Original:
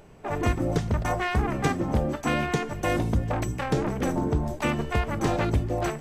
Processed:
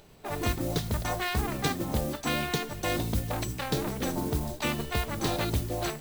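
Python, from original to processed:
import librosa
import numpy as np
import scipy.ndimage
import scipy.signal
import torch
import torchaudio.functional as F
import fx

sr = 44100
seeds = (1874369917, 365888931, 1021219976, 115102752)

y = fx.peak_eq(x, sr, hz=4000.0, db=12.0, octaves=0.74)
y = fx.mod_noise(y, sr, seeds[0], snr_db=18)
y = fx.high_shelf(y, sr, hz=6800.0, db=6.5)
y = y * librosa.db_to_amplitude(-5.0)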